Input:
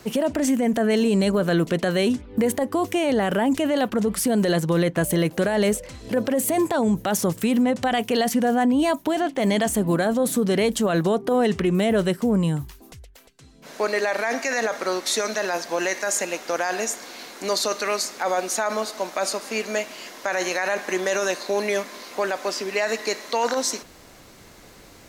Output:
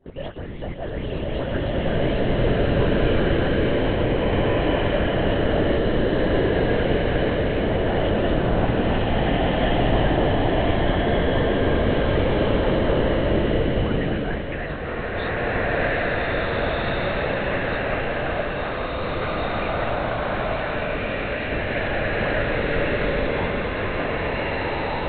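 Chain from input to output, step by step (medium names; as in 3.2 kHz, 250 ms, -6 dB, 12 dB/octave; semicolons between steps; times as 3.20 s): delay that grows with frequency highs late, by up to 261 ms; high-pass 250 Hz; in parallel at -9 dB: sample-and-hold 37×; on the sum: LPC vocoder at 8 kHz whisper; swelling reverb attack 1730 ms, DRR -10 dB; trim -7.5 dB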